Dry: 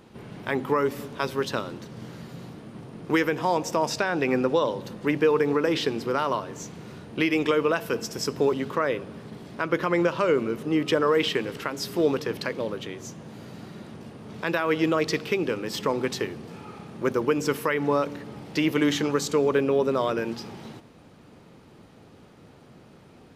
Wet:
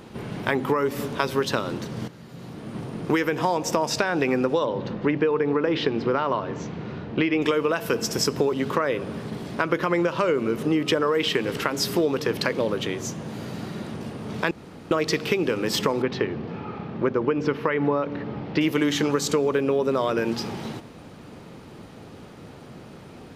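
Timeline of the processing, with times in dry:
2.08–2.75 fade in quadratic, from -13 dB
4.65–7.42 air absorption 220 m
14.51–14.91 room tone
16.02–18.61 air absorption 280 m
whole clip: compressor, threshold -27 dBFS; gain +8 dB

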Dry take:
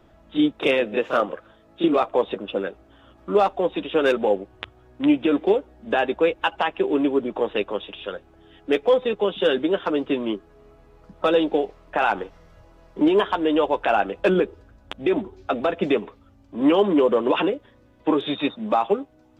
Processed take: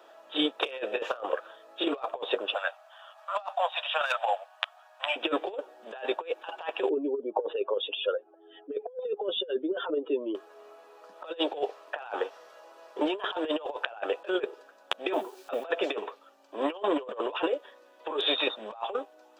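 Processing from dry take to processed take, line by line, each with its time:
2.54–5.16 elliptic high-pass 640 Hz
6.89–10.35 spectral contrast raised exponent 2
15.13–15.68 requantised 10-bit, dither none
whole clip: HPF 470 Hz 24 dB/oct; notch 2100 Hz, Q 6.1; negative-ratio compressor -29 dBFS, ratio -0.5

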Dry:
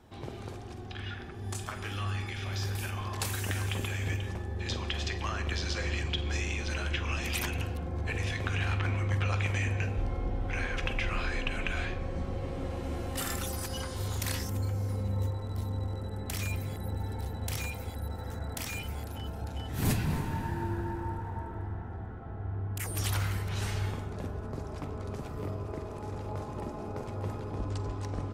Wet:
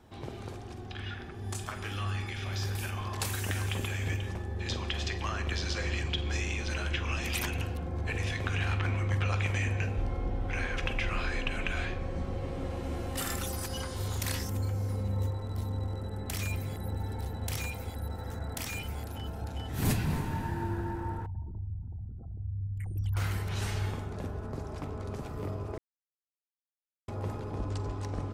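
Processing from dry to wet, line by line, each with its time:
21.26–23.17 formant sharpening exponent 3
25.78–27.08 mute

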